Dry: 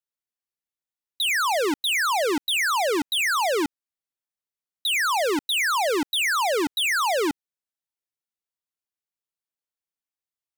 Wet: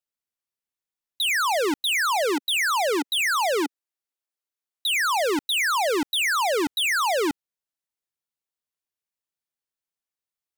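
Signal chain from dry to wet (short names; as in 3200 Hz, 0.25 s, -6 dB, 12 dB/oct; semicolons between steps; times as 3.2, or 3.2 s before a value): 2.16–5.05 steep high-pass 260 Hz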